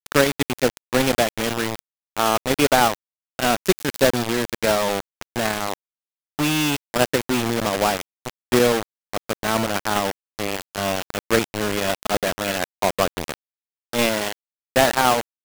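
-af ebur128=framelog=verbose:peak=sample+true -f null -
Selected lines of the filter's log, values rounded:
Integrated loudness:
  I:         -21.8 LUFS
  Threshold: -32.2 LUFS
Loudness range:
  LRA:         3.2 LU
  Threshold: -42.6 LUFS
  LRA low:   -24.1 LUFS
  LRA high:  -20.9 LUFS
Sample peak:
  Peak:       -6.1 dBFS
True peak:
  Peak:       -4.1 dBFS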